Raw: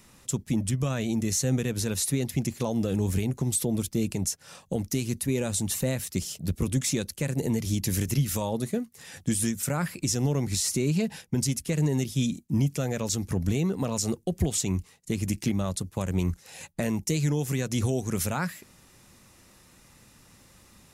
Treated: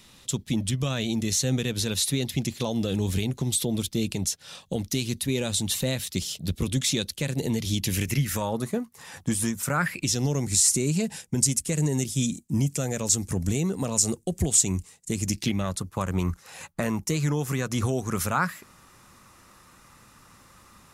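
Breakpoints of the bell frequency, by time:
bell +11 dB 0.82 oct
7.75 s 3600 Hz
8.73 s 1000 Hz
9.63 s 1000 Hz
10.43 s 8000 Hz
15.2 s 8000 Hz
15.78 s 1200 Hz

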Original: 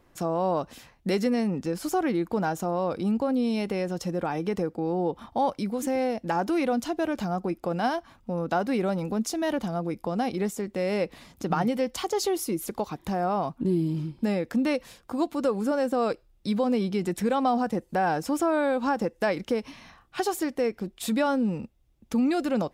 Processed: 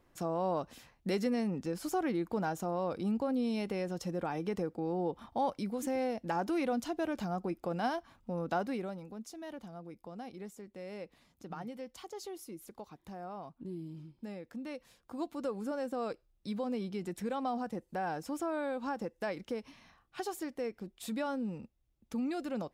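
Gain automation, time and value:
8.6 s -7 dB
9.06 s -17.5 dB
14.64 s -17.5 dB
15.24 s -11 dB

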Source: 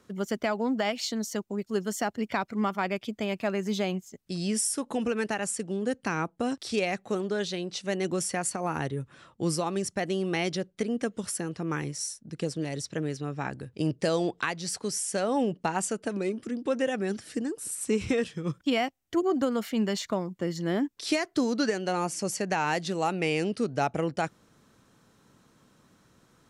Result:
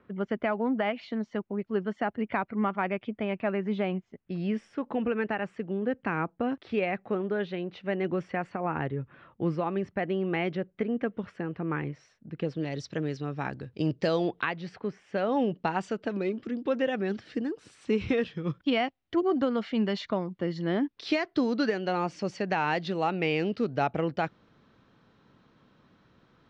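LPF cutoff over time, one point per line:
LPF 24 dB/oct
12.26 s 2600 Hz
12.84 s 4800 Hz
14.03 s 4800 Hz
14.98 s 2300 Hz
15.37 s 4100 Hz

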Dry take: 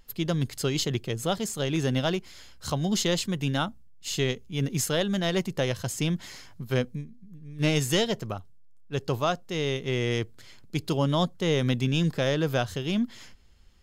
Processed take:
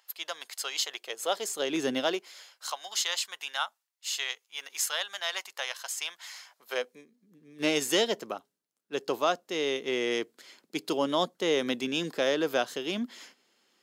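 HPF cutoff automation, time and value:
HPF 24 dB/oct
0.88 s 710 Hz
1.89 s 240 Hz
2.78 s 830 Hz
6.3 s 830 Hz
7.36 s 270 Hz

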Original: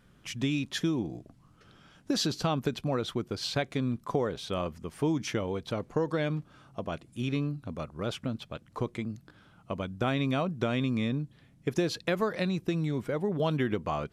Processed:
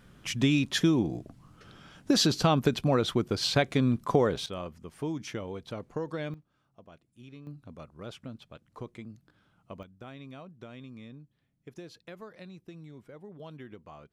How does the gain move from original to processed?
+5 dB
from 4.46 s -5.5 dB
from 6.34 s -18 dB
from 7.47 s -9 dB
from 9.83 s -17 dB

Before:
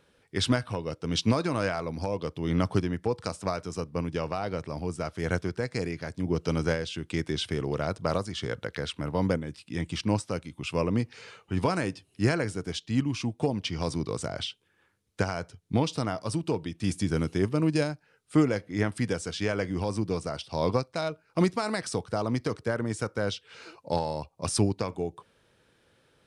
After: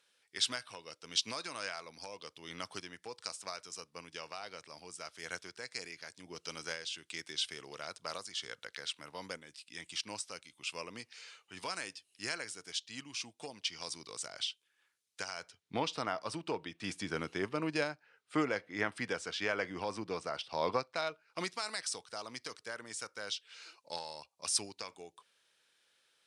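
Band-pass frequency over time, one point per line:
band-pass, Q 0.55
15.29 s 6500 Hz
15.81 s 1900 Hz
20.88 s 1900 Hz
21.72 s 6200 Hz

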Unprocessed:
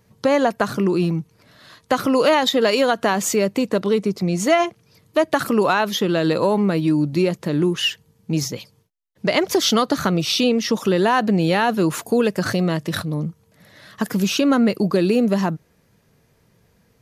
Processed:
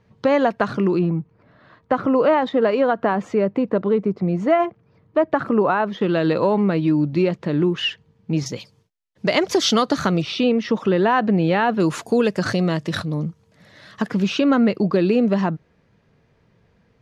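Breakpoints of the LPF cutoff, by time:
3300 Hz
from 0.99 s 1500 Hz
from 6.01 s 3200 Hz
from 8.46 s 7000 Hz
from 10.22 s 2600 Hz
from 11.8 s 6500 Hz
from 14.02 s 3400 Hz

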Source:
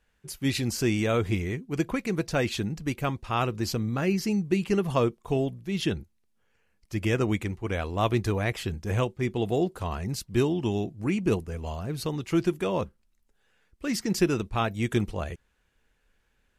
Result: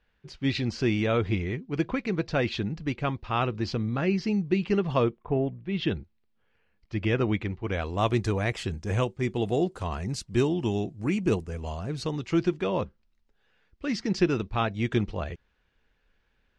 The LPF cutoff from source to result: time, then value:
LPF 24 dB/oct
5.04 s 4700 Hz
5.32 s 1900 Hz
5.9 s 4300 Hz
7.59 s 4300 Hz
8 s 8700 Hz
11.74 s 8700 Hz
12.63 s 5200 Hz

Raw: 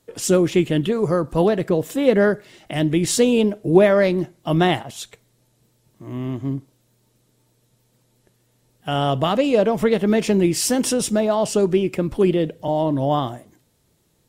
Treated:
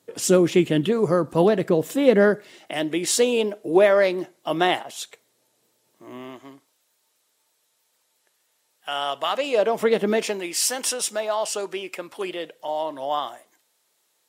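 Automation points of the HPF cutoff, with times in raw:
2.23 s 160 Hz
2.8 s 410 Hz
6.12 s 410 Hz
6.53 s 890 Hz
9.26 s 890 Hz
10.03 s 250 Hz
10.42 s 790 Hz

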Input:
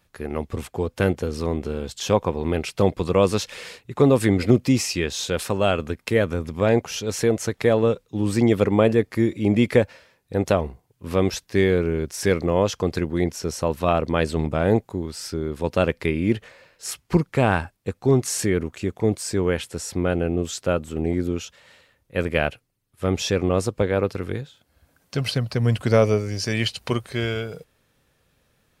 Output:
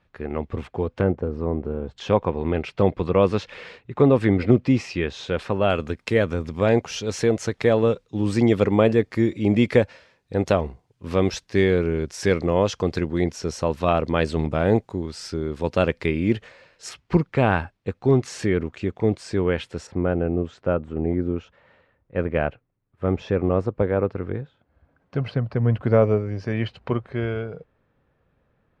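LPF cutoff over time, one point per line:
2800 Hz
from 1.01 s 1100 Hz
from 1.98 s 2700 Hz
from 5.7 s 6200 Hz
from 16.89 s 3700 Hz
from 19.87 s 1500 Hz

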